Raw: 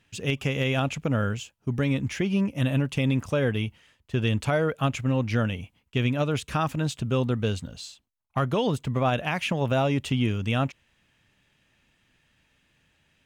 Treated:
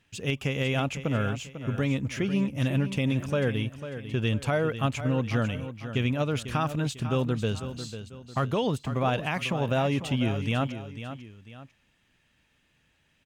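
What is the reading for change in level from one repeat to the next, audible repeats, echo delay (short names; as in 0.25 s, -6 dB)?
-8.0 dB, 2, 0.497 s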